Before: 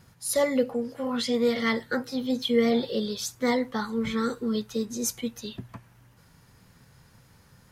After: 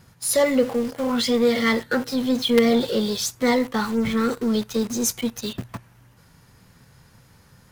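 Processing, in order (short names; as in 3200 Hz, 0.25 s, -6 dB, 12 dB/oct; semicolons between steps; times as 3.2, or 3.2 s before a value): 3.91–4.31 high shelf 3700 Hz -8.5 dB; in parallel at -11 dB: companded quantiser 2-bit; on the sum: gain +3.5 dB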